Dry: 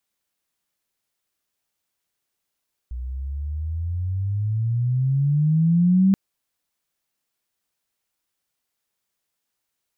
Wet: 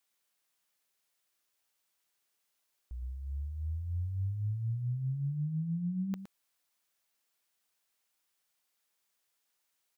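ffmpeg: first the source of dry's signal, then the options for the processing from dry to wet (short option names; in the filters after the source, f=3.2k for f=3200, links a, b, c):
-f lavfi -i "aevalsrc='pow(10,(-12.5+15*(t/3.23-1))/20)*sin(2*PI*60*3.23/(20.5*log(2)/12)*(exp(20.5*log(2)/12*t/3.23)-1))':d=3.23:s=44100"
-filter_complex "[0:a]lowshelf=f=330:g=-10,alimiter=level_in=7dB:limit=-24dB:level=0:latency=1:release=49,volume=-7dB,asplit=2[a][b];[b]aecho=0:1:115:0.299[c];[a][c]amix=inputs=2:normalize=0"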